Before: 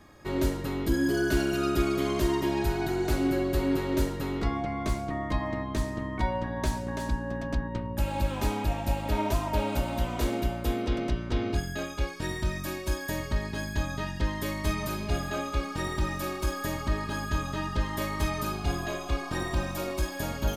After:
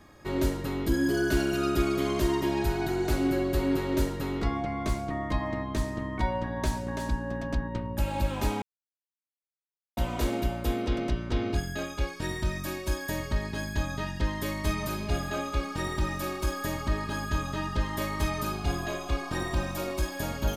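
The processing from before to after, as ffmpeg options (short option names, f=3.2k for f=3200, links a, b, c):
-filter_complex "[0:a]asplit=3[a][b][c];[a]atrim=end=8.62,asetpts=PTS-STARTPTS,afade=t=out:st=8.616:d=0.004:c=hsin[d];[b]atrim=start=8.62:end=9.97,asetpts=PTS-STARTPTS,volume=0[e];[c]atrim=start=9.97,asetpts=PTS-STARTPTS,afade=t=in:d=0.004:c=hsin[f];[d][e][f]concat=n=3:v=0:a=1"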